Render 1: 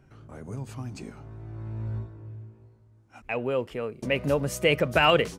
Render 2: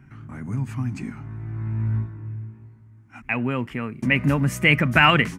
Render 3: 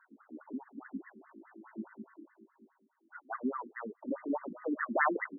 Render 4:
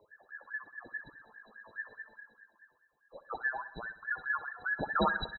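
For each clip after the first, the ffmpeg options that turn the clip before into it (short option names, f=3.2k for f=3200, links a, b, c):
-af "equalizer=f=125:t=o:w=1:g=7,equalizer=f=250:t=o:w=1:g=10,equalizer=f=500:t=o:w=1:g=-12,equalizer=f=1k:t=o:w=1:g=4,equalizer=f=2k:t=o:w=1:g=11,equalizer=f=4k:t=o:w=1:g=-6,volume=1.5dB"
-af "aphaser=in_gain=1:out_gain=1:delay=3.5:decay=0.37:speed=1.1:type=sinusoidal,afftfilt=real='re*lt(hypot(re,im),0.794)':imag='im*lt(hypot(re,im),0.794)':win_size=1024:overlap=0.75,afftfilt=real='re*between(b*sr/1024,280*pow(1500/280,0.5+0.5*sin(2*PI*4.8*pts/sr))/1.41,280*pow(1500/280,0.5+0.5*sin(2*PI*4.8*pts/sr))*1.41)':imag='im*between(b*sr/1024,280*pow(1500/280,0.5+0.5*sin(2*PI*4.8*pts/sr))/1.41,280*pow(1500/280,0.5+0.5*sin(2*PI*4.8*pts/sr))*1.41)':win_size=1024:overlap=0.75,volume=-3.5dB"
-af "afftfilt=real='real(if(between(b,1,1012),(2*floor((b-1)/92)+1)*92-b,b),0)':imag='imag(if(between(b,1,1012),(2*floor((b-1)/92)+1)*92-b,b),0)*if(between(b,1,1012),-1,1)':win_size=2048:overlap=0.75,aecho=1:1:64|128|192|256|320|384:0.158|0.0951|0.0571|0.0342|0.0205|0.0123"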